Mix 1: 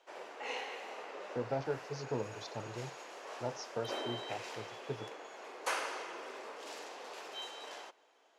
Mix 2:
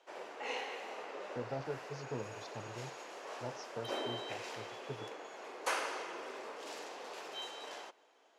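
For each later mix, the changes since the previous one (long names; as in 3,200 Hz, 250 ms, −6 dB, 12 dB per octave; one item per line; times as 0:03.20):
speech −6.0 dB
master: add low-shelf EQ 320 Hz +4 dB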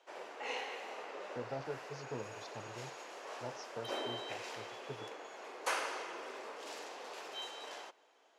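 master: add low-shelf EQ 320 Hz −4 dB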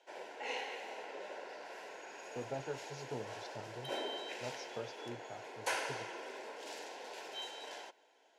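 speech: entry +1.00 s
background: add Butterworth band-reject 1,200 Hz, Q 4.3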